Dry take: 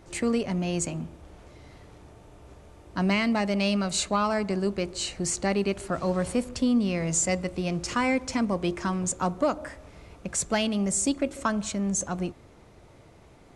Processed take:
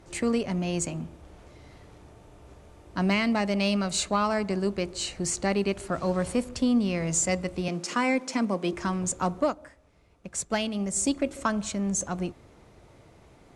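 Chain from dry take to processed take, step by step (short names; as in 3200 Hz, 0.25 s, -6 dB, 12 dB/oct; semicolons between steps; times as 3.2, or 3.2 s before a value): 7.68–8.73 steep high-pass 170 Hz; added harmonics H 7 -37 dB, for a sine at -11 dBFS; 9.4–10.96 upward expander 1.5:1, over -47 dBFS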